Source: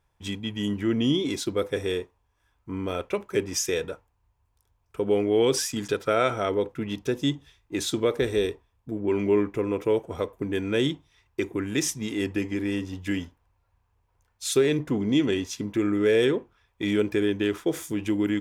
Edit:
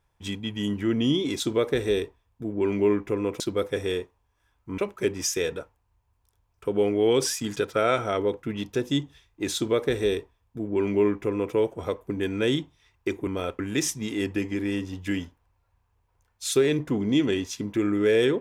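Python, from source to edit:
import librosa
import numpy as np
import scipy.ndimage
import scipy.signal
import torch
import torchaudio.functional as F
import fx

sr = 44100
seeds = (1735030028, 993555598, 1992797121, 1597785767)

y = fx.edit(x, sr, fx.move(start_s=2.78, length_s=0.32, to_s=11.59),
    fx.duplicate(start_s=7.87, length_s=2.0, to_s=1.4), tone=tone)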